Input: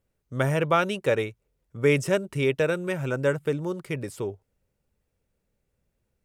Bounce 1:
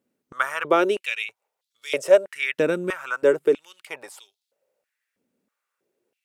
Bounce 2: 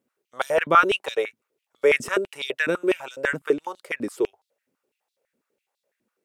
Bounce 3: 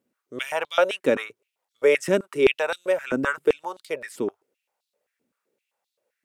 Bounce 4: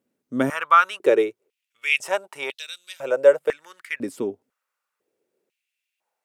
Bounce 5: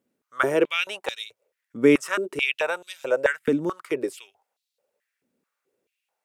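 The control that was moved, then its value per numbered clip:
stepped high-pass, rate: 3.1, 12, 7.7, 2, 4.6 Hz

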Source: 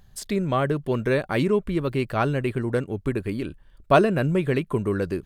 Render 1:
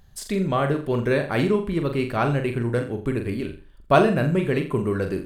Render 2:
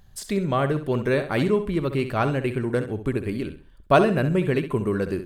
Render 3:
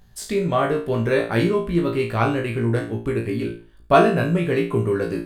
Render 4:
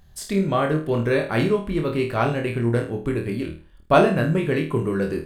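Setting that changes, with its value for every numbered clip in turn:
flutter echo, walls apart: 7.2, 11.2, 3, 4.4 m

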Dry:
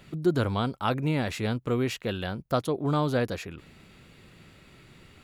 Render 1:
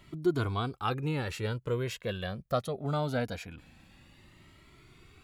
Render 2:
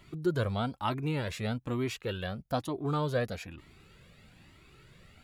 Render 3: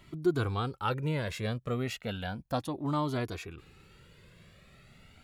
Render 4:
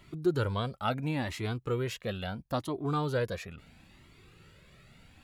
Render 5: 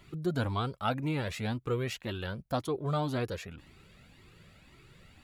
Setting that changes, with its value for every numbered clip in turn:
cascading flanger, rate: 0.22, 1.1, 0.33, 0.74, 1.9 Hz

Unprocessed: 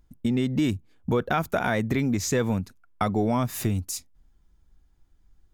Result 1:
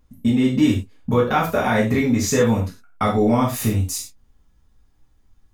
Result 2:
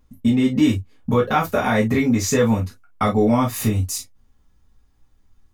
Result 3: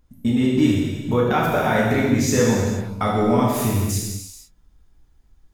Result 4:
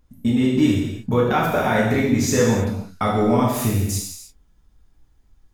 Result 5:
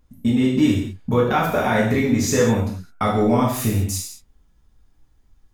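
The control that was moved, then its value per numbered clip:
non-linear reverb, gate: 140, 80, 520, 350, 240 ms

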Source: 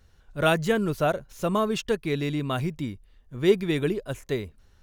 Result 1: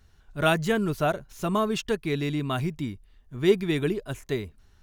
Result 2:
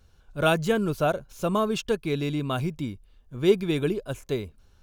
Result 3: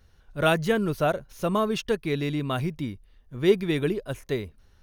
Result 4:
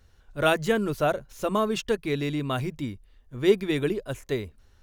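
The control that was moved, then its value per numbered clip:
notch, frequency: 520, 1900, 7400, 170 Hz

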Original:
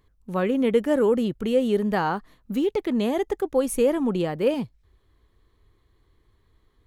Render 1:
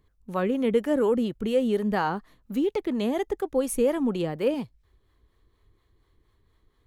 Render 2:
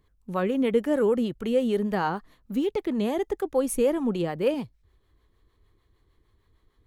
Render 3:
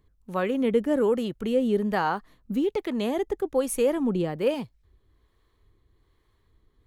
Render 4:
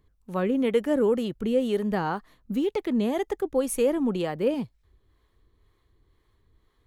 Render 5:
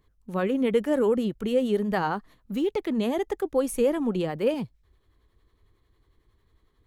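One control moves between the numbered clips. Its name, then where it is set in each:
harmonic tremolo, rate: 4.2, 6.6, 1.2, 2, 11 Hz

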